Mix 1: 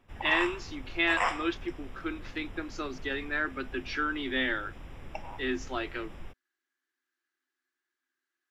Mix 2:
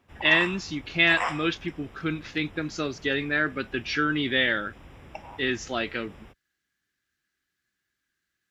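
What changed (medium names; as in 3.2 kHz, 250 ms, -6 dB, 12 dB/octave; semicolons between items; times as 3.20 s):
speech: remove rippled Chebyshev high-pass 250 Hz, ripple 9 dB; master: add high-pass 53 Hz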